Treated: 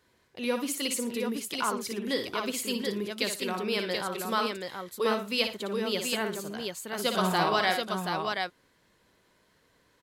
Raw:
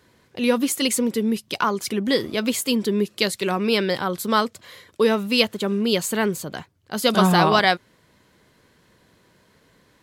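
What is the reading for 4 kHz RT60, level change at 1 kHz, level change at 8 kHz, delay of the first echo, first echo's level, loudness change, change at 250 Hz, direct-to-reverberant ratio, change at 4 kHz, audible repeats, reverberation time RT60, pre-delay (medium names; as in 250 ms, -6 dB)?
no reverb, -7.0 dB, -6.5 dB, 59 ms, -6.5 dB, -8.5 dB, -11.0 dB, no reverb, -6.5 dB, 3, no reverb, no reverb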